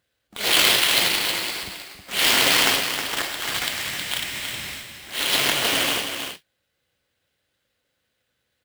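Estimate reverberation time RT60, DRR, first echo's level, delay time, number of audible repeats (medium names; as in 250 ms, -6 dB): no reverb, no reverb, -7.0 dB, 316 ms, 1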